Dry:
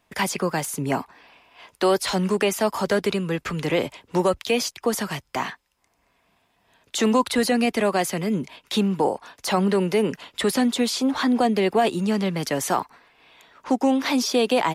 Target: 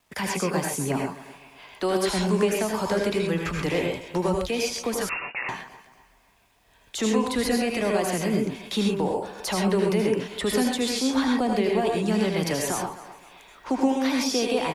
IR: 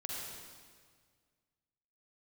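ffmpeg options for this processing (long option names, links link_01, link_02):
-filter_complex "[0:a]aecho=1:1:256|512|768:0.0944|0.033|0.0116,acrossover=split=330[link_01][link_02];[link_01]asubboost=boost=3:cutoff=88[link_03];[link_02]alimiter=limit=-19dB:level=0:latency=1:release=217[link_04];[link_03][link_04]amix=inputs=2:normalize=0[link_05];[1:a]atrim=start_sample=2205,atrim=end_sample=3528,asetrate=25137,aresample=44100[link_06];[link_05][link_06]afir=irnorm=-1:irlink=0,acrusher=bits=10:mix=0:aa=0.000001,asettb=1/sr,asplit=3[link_07][link_08][link_09];[link_07]atrim=end=5.094[link_10];[link_08]atrim=start=5.09:end=5.49,asetpts=PTS-STARTPTS,afade=type=in:duration=0.004:curve=qsin,afade=type=out:start_time=0.396:duration=0.004:curve=qsin,lowpass=frequency=2500:width_type=q:width=0.5098,lowpass=frequency=2500:width_type=q:width=0.6013,lowpass=frequency=2500:width_type=q:width=0.9,lowpass=frequency=2500:width_type=q:width=2.563,afreqshift=-2900[link_11];[link_09]atrim=start=5.486[link_12];[link_10][link_11]acrossfade=duration=0.004:curve1=hsin:curve2=qsin[link_13];[link_13][link_12]acrossfade=duration=0.004:curve1=qsin:curve2=hsin"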